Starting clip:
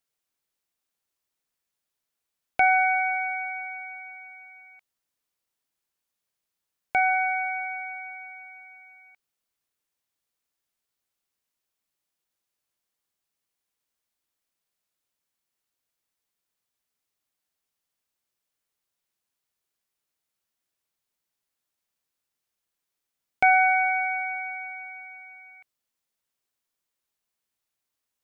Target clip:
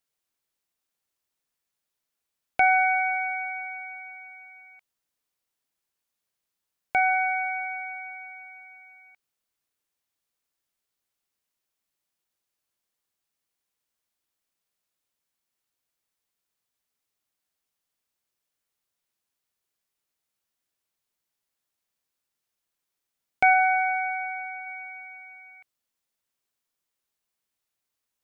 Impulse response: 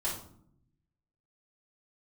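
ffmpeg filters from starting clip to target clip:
-filter_complex "[0:a]asplit=3[link_01][link_02][link_03];[link_01]afade=type=out:start_time=23.53:duration=0.02[link_04];[link_02]highpass=320,lowpass=2200,afade=type=in:start_time=23.53:duration=0.02,afade=type=out:start_time=24.65:duration=0.02[link_05];[link_03]afade=type=in:start_time=24.65:duration=0.02[link_06];[link_04][link_05][link_06]amix=inputs=3:normalize=0"

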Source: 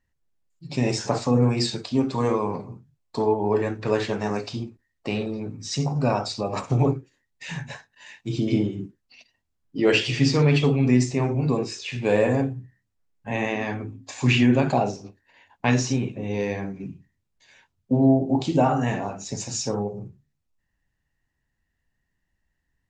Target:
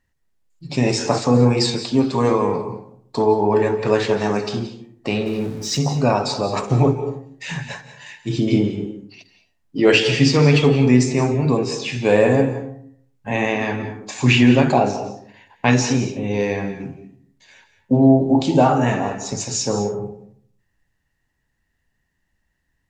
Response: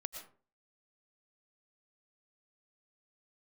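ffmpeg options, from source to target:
-filter_complex "[0:a]asettb=1/sr,asplit=3[link_01][link_02][link_03];[link_01]atrim=end=5.264[link_04];[link_02]atrim=start=5.26:end=5.79,asetpts=PTS-STARTPTS,afade=type=in:duration=0.004:curve=qsin,afade=type=out:start_time=0.526:duration=0.004:curve=qsin,aeval=exprs='val(0)+0.5*0.00944*sgn(val(0))':channel_layout=same[link_05];[link_03]atrim=start=5.786[link_06];[link_04][link_05]acrossfade=duration=0.004:curve1=hsin:curve2=qsin[link_07];[link_07][link_06]acrossfade=duration=0.004:curve1=qsin:curve2=hsin,asplit=2[link_08][link_09];[link_09]lowshelf=frequency=130:gain=-6[link_10];[1:a]atrim=start_sample=2205,asetrate=29547,aresample=44100[link_11];[link_10][link_11]afir=irnorm=-1:irlink=0,volume=0.5dB[link_12];[link_08][link_12]amix=inputs=2:normalize=0"

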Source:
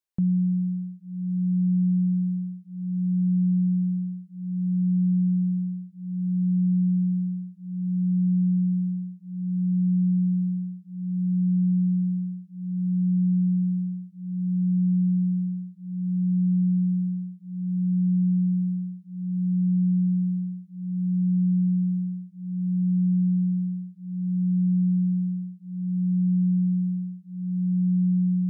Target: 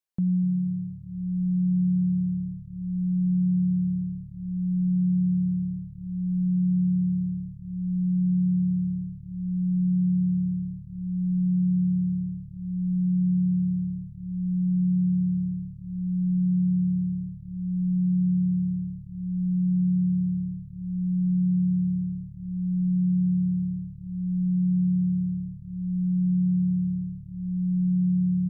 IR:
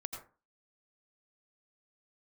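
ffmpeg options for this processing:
-filter_complex "[0:a]asplit=6[link_01][link_02][link_03][link_04][link_05][link_06];[link_02]adelay=240,afreqshift=-36,volume=-18dB[link_07];[link_03]adelay=480,afreqshift=-72,volume=-22.7dB[link_08];[link_04]adelay=720,afreqshift=-108,volume=-27.5dB[link_09];[link_05]adelay=960,afreqshift=-144,volume=-32.2dB[link_10];[link_06]adelay=1200,afreqshift=-180,volume=-36.9dB[link_11];[link_01][link_07][link_08][link_09][link_10][link_11]amix=inputs=6:normalize=0,asplit=2[link_12][link_13];[1:a]atrim=start_sample=2205[link_14];[link_13][link_14]afir=irnorm=-1:irlink=0,volume=-10dB[link_15];[link_12][link_15]amix=inputs=2:normalize=0,volume=-3.5dB"

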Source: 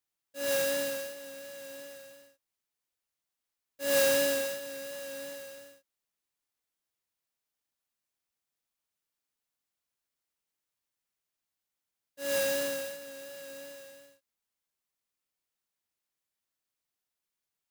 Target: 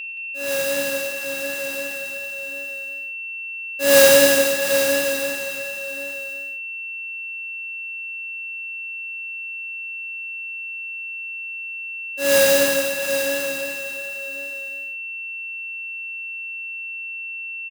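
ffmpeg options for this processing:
ffmpeg -i in.wav -af "dynaudnorm=framelen=220:gausssize=9:maxgain=11dB,aeval=exprs='val(0)+0.0251*sin(2*PI*2700*n/s)':channel_layout=same,aecho=1:1:101|118|173|681|781:0.126|0.158|0.335|0.188|0.355,volume=3dB" out.wav

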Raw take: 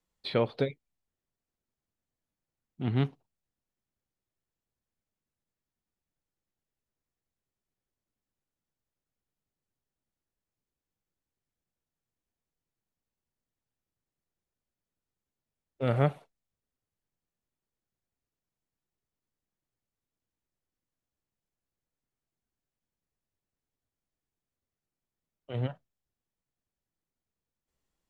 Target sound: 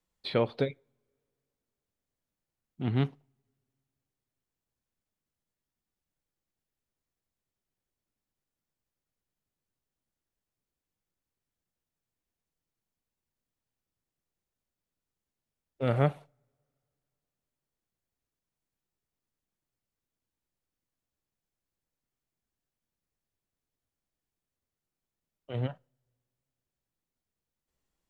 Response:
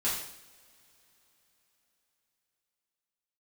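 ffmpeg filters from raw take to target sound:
-filter_complex "[0:a]asplit=2[link_01][link_02];[1:a]atrim=start_sample=2205,asetrate=70560,aresample=44100,lowpass=2900[link_03];[link_02][link_03]afir=irnorm=-1:irlink=0,volume=-28dB[link_04];[link_01][link_04]amix=inputs=2:normalize=0"

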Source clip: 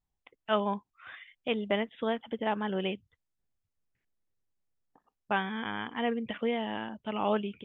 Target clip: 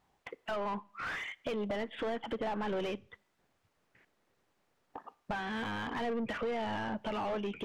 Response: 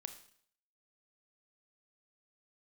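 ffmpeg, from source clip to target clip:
-filter_complex "[0:a]acompressor=threshold=-41dB:ratio=12,asplit=2[link_01][link_02];[link_02]highpass=frequency=720:poles=1,volume=31dB,asoftclip=type=tanh:threshold=-26.5dB[link_03];[link_01][link_03]amix=inputs=2:normalize=0,lowpass=frequency=1000:poles=1,volume=-6dB,asplit=2[link_04][link_05];[1:a]atrim=start_sample=2205[link_06];[link_05][link_06]afir=irnorm=-1:irlink=0,volume=-10.5dB[link_07];[link_04][link_07]amix=inputs=2:normalize=0"

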